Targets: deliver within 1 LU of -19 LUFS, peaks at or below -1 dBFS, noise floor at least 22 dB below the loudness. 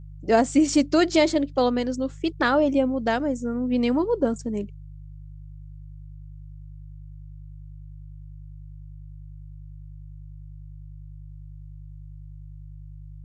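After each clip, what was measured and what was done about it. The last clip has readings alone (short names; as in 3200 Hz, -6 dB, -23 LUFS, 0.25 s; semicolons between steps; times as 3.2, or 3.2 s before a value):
hum 50 Hz; harmonics up to 150 Hz; hum level -38 dBFS; loudness -23.0 LUFS; peak -7.5 dBFS; loudness target -19.0 LUFS
-> de-hum 50 Hz, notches 3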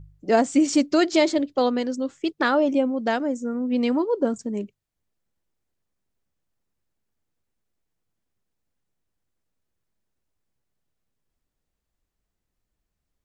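hum none; loudness -23.0 LUFS; peak -7.0 dBFS; loudness target -19.0 LUFS
-> gain +4 dB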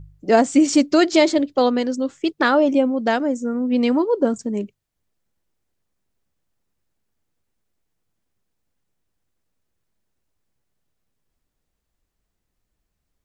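loudness -19.0 LUFS; peak -3.0 dBFS; noise floor -77 dBFS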